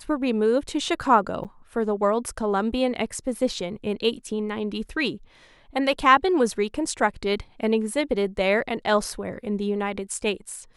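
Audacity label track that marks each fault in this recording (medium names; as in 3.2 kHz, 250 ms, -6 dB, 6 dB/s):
1.440000	1.450000	dropout 8 ms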